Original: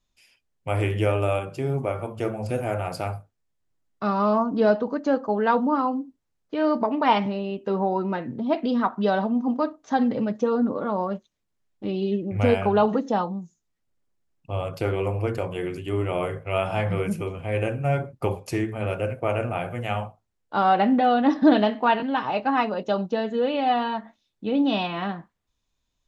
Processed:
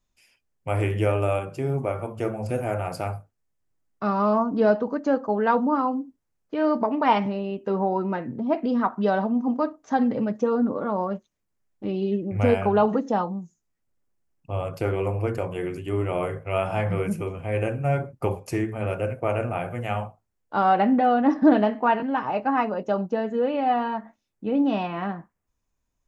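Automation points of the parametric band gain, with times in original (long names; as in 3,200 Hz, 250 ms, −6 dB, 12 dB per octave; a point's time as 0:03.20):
parametric band 3,700 Hz
0:08.08 −6 dB
0:08.57 −14 dB
0:08.87 −7 dB
0:20.72 −7 dB
0:21.25 −14.5 dB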